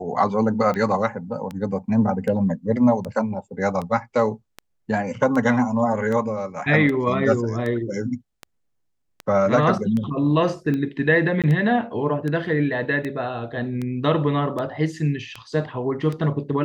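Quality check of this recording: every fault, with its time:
tick 78 rpm -17 dBFS
11.42–11.44 gap 17 ms

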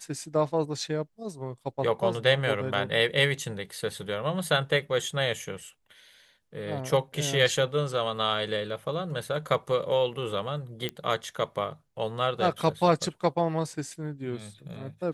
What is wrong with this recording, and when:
10.89 pop -16 dBFS

